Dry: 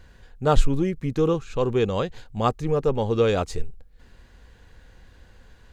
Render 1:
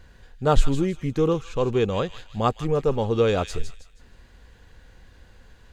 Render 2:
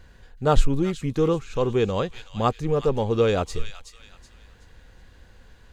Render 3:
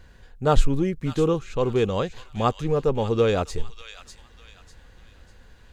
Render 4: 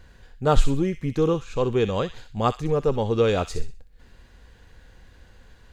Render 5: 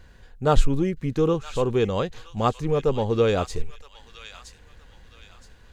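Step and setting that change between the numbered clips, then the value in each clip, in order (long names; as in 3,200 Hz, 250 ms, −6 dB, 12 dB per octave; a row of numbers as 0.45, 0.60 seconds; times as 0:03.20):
delay with a high-pass on its return, delay time: 159, 374, 598, 63, 969 milliseconds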